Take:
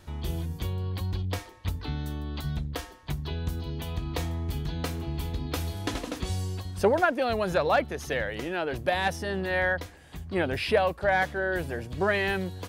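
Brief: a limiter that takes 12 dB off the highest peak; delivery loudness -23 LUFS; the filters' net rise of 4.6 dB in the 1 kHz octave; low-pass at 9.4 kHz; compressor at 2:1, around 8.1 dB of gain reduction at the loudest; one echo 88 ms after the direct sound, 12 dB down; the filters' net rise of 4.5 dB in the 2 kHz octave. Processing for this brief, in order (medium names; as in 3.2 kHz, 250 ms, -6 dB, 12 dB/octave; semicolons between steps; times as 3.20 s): low-pass 9.4 kHz; peaking EQ 1 kHz +6 dB; peaking EQ 2 kHz +3.5 dB; compression 2:1, threshold -30 dBFS; peak limiter -27 dBFS; delay 88 ms -12 dB; trim +13 dB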